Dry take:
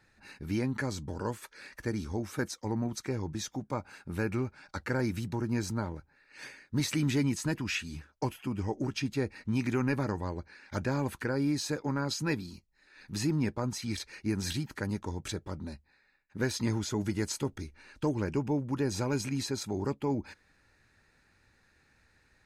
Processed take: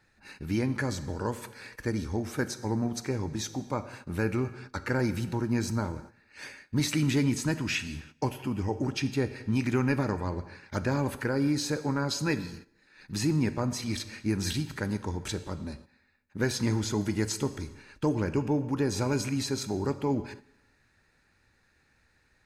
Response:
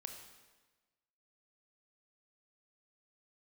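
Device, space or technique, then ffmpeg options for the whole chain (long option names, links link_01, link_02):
keyed gated reverb: -filter_complex "[0:a]asplit=3[link_01][link_02][link_03];[1:a]atrim=start_sample=2205[link_04];[link_02][link_04]afir=irnorm=-1:irlink=0[link_05];[link_03]apad=whole_len=990367[link_06];[link_05][link_06]sidechaingate=range=-13dB:threshold=-53dB:ratio=16:detection=peak,volume=2dB[link_07];[link_01][link_07]amix=inputs=2:normalize=0,volume=-2dB"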